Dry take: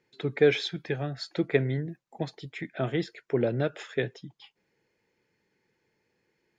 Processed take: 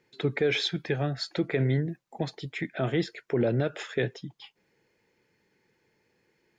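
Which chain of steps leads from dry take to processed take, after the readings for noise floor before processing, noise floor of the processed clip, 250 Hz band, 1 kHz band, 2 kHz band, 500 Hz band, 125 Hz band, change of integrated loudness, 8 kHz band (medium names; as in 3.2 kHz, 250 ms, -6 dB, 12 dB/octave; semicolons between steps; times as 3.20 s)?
-76 dBFS, -72 dBFS, +1.5 dB, +1.0 dB, +0.5 dB, -1.5 dB, +2.5 dB, +0.5 dB, no reading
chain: peak limiter -20.5 dBFS, peak gain reduction 10.5 dB; trim +4 dB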